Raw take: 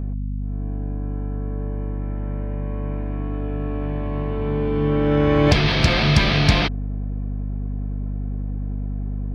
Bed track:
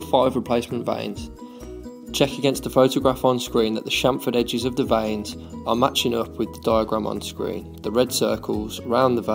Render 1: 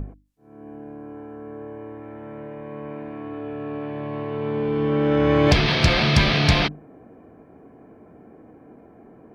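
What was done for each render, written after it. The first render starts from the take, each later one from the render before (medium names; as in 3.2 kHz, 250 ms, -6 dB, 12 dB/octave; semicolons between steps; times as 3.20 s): hum notches 50/100/150/200/250/300 Hz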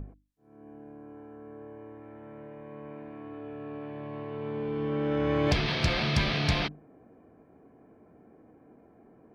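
trim -9 dB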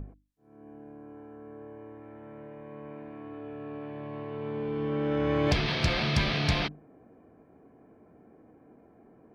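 no audible change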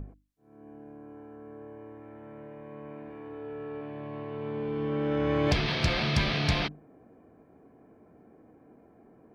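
3.05–3.81 s: flutter echo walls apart 7.4 m, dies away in 0.36 s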